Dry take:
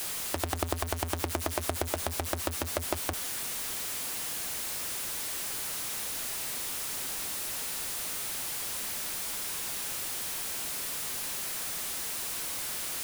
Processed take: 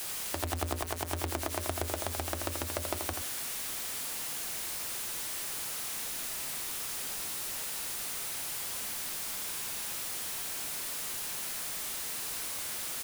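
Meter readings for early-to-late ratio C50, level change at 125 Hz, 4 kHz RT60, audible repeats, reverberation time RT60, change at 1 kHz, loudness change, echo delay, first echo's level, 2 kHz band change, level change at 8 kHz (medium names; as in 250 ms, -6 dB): no reverb, -2.0 dB, no reverb, 1, no reverb, -2.0 dB, -2.0 dB, 83 ms, -5.5 dB, -2.0 dB, -2.0 dB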